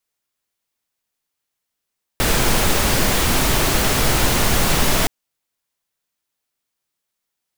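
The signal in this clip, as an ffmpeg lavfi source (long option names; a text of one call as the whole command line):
ffmpeg -f lavfi -i "anoisesrc=color=pink:amplitude=0.767:duration=2.87:sample_rate=44100:seed=1" out.wav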